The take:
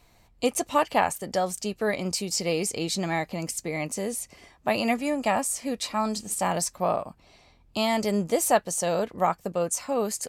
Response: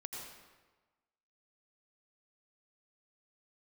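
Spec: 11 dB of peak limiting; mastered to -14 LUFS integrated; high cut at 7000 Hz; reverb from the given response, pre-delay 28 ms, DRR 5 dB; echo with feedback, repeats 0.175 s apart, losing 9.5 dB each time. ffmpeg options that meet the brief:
-filter_complex "[0:a]lowpass=7k,alimiter=limit=-20dB:level=0:latency=1,aecho=1:1:175|350|525|700:0.335|0.111|0.0365|0.012,asplit=2[a][b];[1:a]atrim=start_sample=2205,adelay=28[c];[b][c]afir=irnorm=-1:irlink=0,volume=-3.5dB[d];[a][d]amix=inputs=2:normalize=0,volume=15.5dB"

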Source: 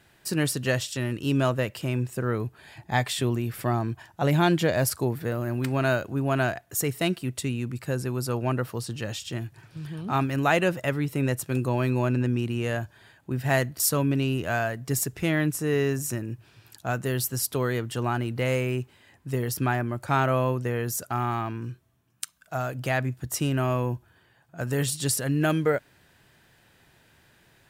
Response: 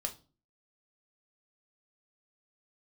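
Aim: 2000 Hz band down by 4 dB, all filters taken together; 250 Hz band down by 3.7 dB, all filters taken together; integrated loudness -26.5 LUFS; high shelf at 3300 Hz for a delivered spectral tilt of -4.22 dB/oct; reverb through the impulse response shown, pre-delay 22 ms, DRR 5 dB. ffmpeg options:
-filter_complex "[0:a]equalizer=f=250:t=o:g=-5,equalizer=f=2k:t=o:g=-7,highshelf=f=3.3k:g=5.5,asplit=2[a][b];[1:a]atrim=start_sample=2205,adelay=22[c];[b][c]afir=irnorm=-1:irlink=0,volume=-5.5dB[d];[a][d]amix=inputs=2:normalize=0,volume=-0.5dB"

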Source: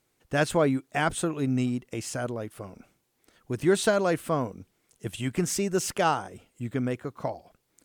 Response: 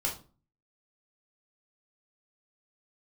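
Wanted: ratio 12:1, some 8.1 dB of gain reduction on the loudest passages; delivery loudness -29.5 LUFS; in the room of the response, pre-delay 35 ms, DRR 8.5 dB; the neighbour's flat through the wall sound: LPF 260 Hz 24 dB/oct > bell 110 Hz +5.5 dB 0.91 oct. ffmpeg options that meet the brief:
-filter_complex "[0:a]acompressor=threshold=-25dB:ratio=12,asplit=2[a][b];[1:a]atrim=start_sample=2205,adelay=35[c];[b][c]afir=irnorm=-1:irlink=0,volume=-13.5dB[d];[a][d]amix=inputs=2:normalize=0,lowpass=f=260:w=0.5412,lowpass=f=260:w=1.3066,equalizer=f=110:t=o:w=0.91:g=5.5,volume=5dB"

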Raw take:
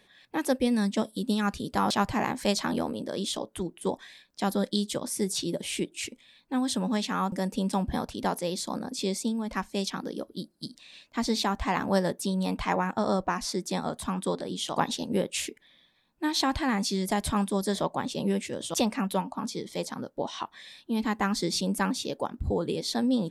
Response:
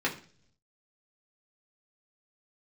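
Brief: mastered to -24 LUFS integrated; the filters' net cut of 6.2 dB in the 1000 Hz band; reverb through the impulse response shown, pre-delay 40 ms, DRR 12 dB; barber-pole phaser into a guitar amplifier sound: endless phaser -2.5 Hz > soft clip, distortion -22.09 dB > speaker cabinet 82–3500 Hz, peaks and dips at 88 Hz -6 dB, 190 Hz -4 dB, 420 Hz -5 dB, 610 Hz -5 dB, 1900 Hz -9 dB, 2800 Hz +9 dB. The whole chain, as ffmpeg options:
-filter_complex "[0:a]equalizer=f=1k:t=o:g=-6.5,asplit=2[a][b];[1:a]atrim=start_sample=2205,adelay=40[c];[b][c]afir=irnorm=-1:irlink=0,volume=-21.5dB[d];[a][d]amix=inputs=2:normalize=0,asplit=2[e][f];[f]afreqshift=-2.5[g];[e][g]amix=inputs=2:normalize=1,asoftclip=threshold=-21dB,highpass=82,equalizer=f=88:t=q:w=4:g=-6,equalizer=f=190:t=q:w=4:g=-4,equalizer=f=420:t=q:w=4:g=-5,equalizer=f=610:t=q:w=4:g=-5,equalizer=f=1.9k:t=q:w=4:g=-9,equalizer=f=2.8k:t=q:w=4:g=9,lowpass=f=3.5k:w=0.5412,lowpass=f=3.5k:w=1.3066,volume=13.5dB"

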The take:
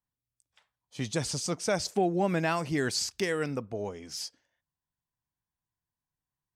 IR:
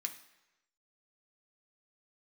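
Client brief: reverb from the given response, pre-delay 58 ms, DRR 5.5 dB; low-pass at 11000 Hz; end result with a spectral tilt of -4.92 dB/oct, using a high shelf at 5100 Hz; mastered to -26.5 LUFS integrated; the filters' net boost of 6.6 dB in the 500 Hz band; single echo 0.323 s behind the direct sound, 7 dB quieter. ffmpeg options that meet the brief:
-filter_complex "[0:a]lowpass=11k,equalizer=f=500:t=o:g=8.5,highshelf=f=5.1k:g=-6,aecho=1:1:323:0.447,asplit=2[a][b];[1:a]atrim=start_sample=2205,adelay=58[c];[b][c]afir=irnorm=-1:irlink=0,volume=-4.5dB[d];[a][d]amix=inputs=2:normalize=0,volume=-1dB"

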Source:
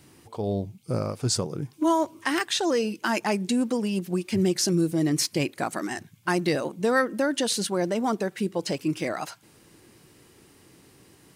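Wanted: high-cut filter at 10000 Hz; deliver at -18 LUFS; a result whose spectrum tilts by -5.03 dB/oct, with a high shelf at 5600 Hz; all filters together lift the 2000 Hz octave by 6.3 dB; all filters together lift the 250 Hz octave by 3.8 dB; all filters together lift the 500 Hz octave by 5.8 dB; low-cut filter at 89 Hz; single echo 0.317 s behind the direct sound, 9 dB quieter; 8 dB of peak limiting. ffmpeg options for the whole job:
-af "highpass=89,lowpass=10k,equalizer=f=250:t=o:g=3,equalizer=f=500:t=o:g=6,equalizer=f=2k:t=o:g=8,highshelf=f=5.6k:g=-5.5,alimiter=limit=-13.5dB:level=0:latency=1,aecho=1:1:317:0.355,volume=5.5dB"

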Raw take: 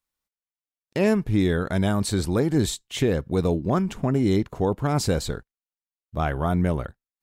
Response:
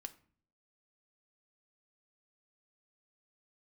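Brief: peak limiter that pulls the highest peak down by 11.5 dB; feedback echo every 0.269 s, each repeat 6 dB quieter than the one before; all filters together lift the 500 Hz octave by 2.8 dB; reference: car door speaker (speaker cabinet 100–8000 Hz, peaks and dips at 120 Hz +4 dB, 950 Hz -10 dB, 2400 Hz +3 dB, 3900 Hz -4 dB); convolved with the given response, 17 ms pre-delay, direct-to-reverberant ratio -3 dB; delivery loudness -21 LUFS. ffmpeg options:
-filter_complex "[0:a]equalizer=f=500:t=o:g=4,alimiter=limit=-19dB:level=0:latency=1,aecho=1:1:269|538|807|1076|1345|1614:0.501|0.251|0.125|0.0626|0.0313|0.0157,asplit=2[a][b];[1:a]atrim=start_sample=2205,adelay=17[c];[b][c]afir=irnorm=-1:irlink=0,volume=7.5dB[d];[a][d]amix=inputs=2:normalize=0,highpass=100,equalizer=f=120:t=q:w=4:g=4,equalizer=f=950:t=q:w=4:g=-10,equalizer=f=2.4k:t=q:w=4:g=3,equalizer=f=3.9k:t=q:w=4:g=-4,lowpass=f=8k:w=0.5412,lowpass=f=8k:w=1.3066,volume=3.5dB"

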